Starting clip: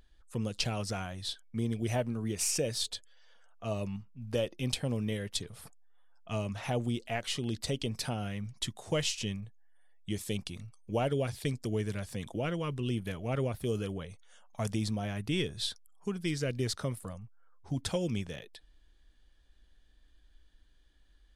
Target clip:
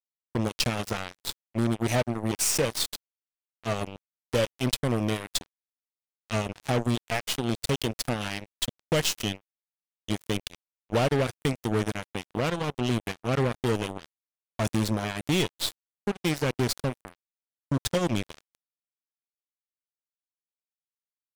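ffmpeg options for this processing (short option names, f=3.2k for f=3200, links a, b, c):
-filter_complex "[0:a]asplit=3[a][b][c];[a]afade=t=out:st=8.2:d=0.02[d];[b]equalizer=f=4.8k:t=o:w=2.9:g=7,afade=t=in:st=8.2:d=0.02,afade=t=out:st=8.61:d=0.02[e];[c]afade=t=in:st=8.61:d=0.02[f];[d][e][f]amix=inputs=3:normalize=0,acrusher=bits=4:mix=0:aa=0.5,volume=5.5dB"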